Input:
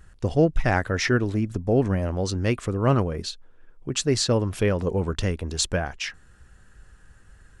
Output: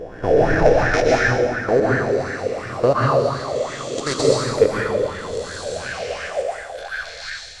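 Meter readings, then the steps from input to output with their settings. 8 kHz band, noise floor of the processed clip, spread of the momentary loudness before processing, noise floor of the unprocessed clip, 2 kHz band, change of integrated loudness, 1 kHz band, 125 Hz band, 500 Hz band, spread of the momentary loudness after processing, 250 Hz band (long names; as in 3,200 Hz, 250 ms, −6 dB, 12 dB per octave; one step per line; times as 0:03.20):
−1.0 dB, −35 dBFS, 9 LU, −53 dBFS, +8.5 dB, +4.5 dB, +9.0 dB, −1.5 dB, +8.5 dB, 12 LU, 0.0 dB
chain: peak hold with a rise ahead of every peak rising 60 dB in 2.17 s
echo through a band-pass that steps 554 ms, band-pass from 590 Hz, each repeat 1.4 octaves, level −2 dB
output level in coarse steps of 17 dB
dense smooth reverb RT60 2 s, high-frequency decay 0.8×, pre-delay 105 ms, DRR −4.5 dB
auto-filter bell 2.8 Hz 470–1,700 Hz +16 dB
level −5.5 dB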